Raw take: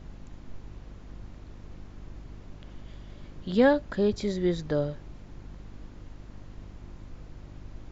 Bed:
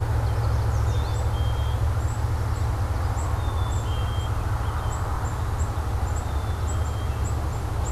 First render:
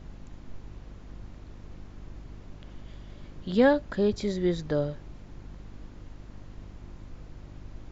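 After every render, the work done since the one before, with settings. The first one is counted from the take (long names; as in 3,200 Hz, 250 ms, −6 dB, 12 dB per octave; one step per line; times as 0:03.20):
no processing that can be heard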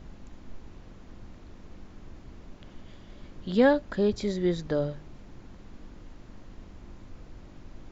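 hum removal 50 Hz, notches 3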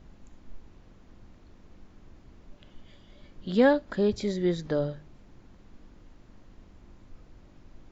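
noise reduction from a noise print 6 dB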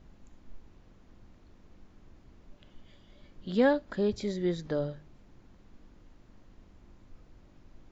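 level −3.5 dB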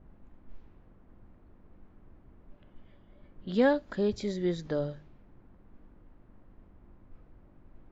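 low-pass that shuts in the quiet parts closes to 1,300 Hz, open at −29 dBFS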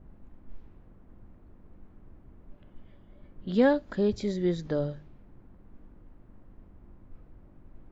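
low-shelf EQ 430 Hz +4 dB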